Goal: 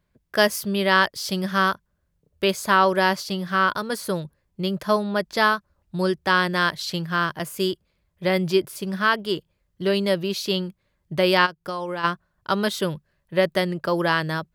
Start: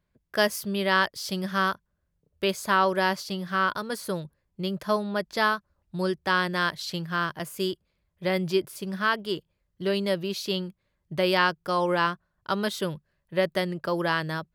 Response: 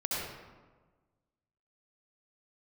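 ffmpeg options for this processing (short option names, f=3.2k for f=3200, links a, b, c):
-filter_complex "[0:a]asplit=3[a][b][c];[a]afade=t=out:st=11.45:d=0.02[d];[b]acompressor=threshold=-32dB:ratio=5,afade=t=in:st=11.45:d=0.02,afade=t=out:st=12.03:d=0.02[e];[c]afade=t=in:st=12.03:d=0.02[f];[d][e][f]amix=inputs=3:normalize=0,volume=4.5dB"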